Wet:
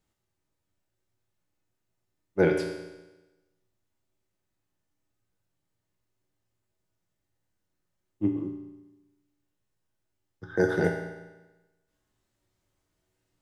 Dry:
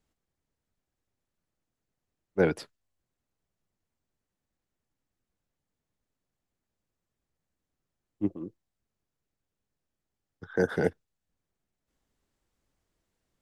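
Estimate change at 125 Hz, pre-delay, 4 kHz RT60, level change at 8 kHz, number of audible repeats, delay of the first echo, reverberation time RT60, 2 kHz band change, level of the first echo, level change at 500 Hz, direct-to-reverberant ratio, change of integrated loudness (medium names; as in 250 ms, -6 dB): +3.0 dB, 3 ms, 1.1 s, no reading, no echo, no echo, 1.1 s, +3.5 dB, no echo, +2.5 dB, 1.0 dB, +2.0 dB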